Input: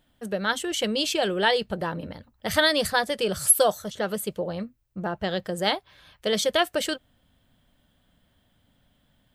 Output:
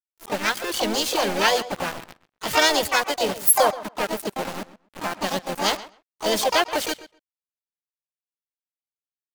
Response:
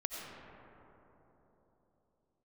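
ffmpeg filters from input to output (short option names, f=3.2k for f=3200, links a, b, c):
-filter_complex "[0:a]aeval=exprs='val(0)*gte(abs(val(0)),0.0447)':c=same,asplit=2[a][b];[b]adelay=128,lowpass=f=3.3k:p=1,volume=-16dB,asplit=2[c][d];[d]adelay=128,lowpass=f=3.3k:p=1,volume=0.15[e];[a][c][e]amix=inputs=3:normalize=0,asplit=4[f][g][h][i];[g]asetrate=52444,aresample=44100,atempo=0.840896,volume=-9dB[j];[h]asetrate=66075,aresample=44100,atempo=0.66742,volume=-2dB[k];[i]asetrate=88200,aresample=44100,atempo=0.5,volume=-12dB[l];[f][j][k][l]amix=inputs=4:normalize=0"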